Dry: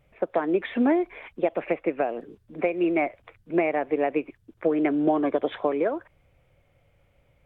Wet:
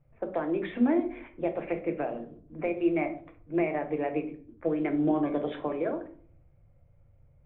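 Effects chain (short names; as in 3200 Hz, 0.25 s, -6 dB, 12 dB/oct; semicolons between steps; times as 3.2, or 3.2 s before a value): low-pass opened by the level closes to 1300 Hz, open at -19 dBFS; on a send: tone controls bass +13 dB, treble +8 dB + reverb RT60 0.50 s, pre-delay 6 ms, DRR 5.5 dB; on the sum: gain -7.5 dB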